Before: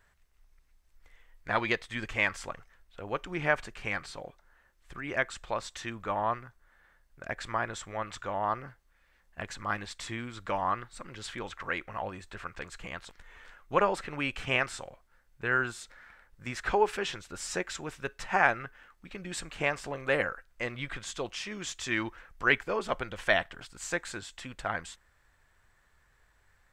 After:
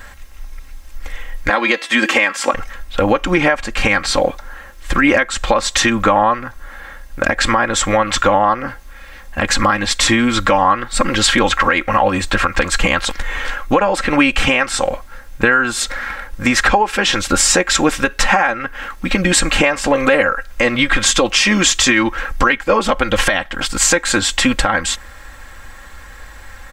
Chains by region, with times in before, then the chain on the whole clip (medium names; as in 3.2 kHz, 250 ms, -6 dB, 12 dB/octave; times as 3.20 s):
1.49–2.54 s: high-pass 230 Hz 24 dB/octave + de-hum 334.6 Hz, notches 30
whole clip: compression 12:1, threshold -38 dBFS; comb 3.7 ms, depth 68%; loudness maximiser +29 dB; trim -1 dB